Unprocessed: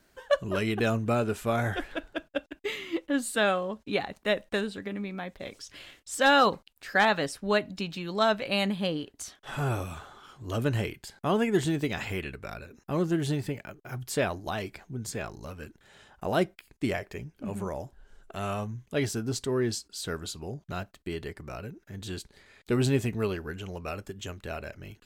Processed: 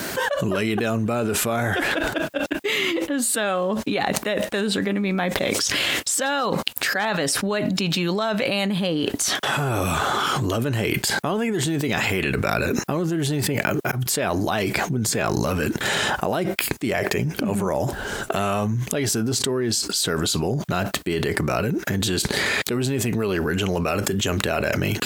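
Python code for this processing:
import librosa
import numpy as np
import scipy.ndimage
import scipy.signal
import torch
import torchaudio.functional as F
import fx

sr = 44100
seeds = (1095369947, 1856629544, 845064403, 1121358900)

y = fx.auto_swell(x, sr, attack_ms=774.0, at=(13.49, 14.06))
y = scipy.signal.sosfilt(scipy.signal.butter(2, 120.0, 'highpass', fs=sr, output='sos'), y)
y = fx.high_shelf(y, sr, hz=10000.0, db=4.5)
y = fx.env_flatten(y, sr, amount_pct=100)
y = y * librosa.db_to_amplitude(-4.0)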